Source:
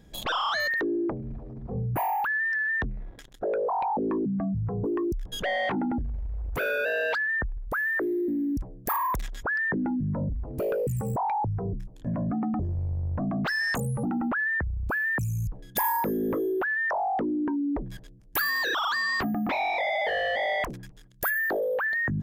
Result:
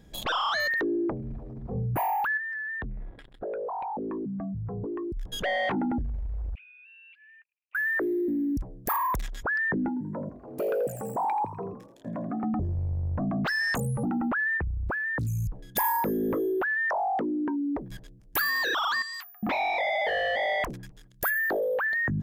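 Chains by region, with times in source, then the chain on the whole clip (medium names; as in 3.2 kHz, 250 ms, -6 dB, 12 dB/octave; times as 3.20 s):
2.37–5.17 s: compression 4:1, threshold -32 dBFS + boxcar filter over 7 samples
6.55–7.75 s: Butterworth band-pass 2.6 kHz, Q 5.5 + transient shaper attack +3 dB, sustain -1 dB + compression 8:1, threshold -51 dBFS
9.88–12.44 s: high-pass 250 Hz + frequency-shifting echo 83 ms, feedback 54%, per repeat +50 Hz, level -13 dB
14.57–15.27 s: low-pass 1.7 kHz 6 dB/octave + loudspeaker Doppler distortion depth 0.79 ms
16.90–17.91 s: high-pass 170 Hz 6 dB/octave + treble shelf 10 kHz +11 dB
19.02–19.43 s: high-pass 870 Hz 24 dB/octave + differentiator
whole clip: none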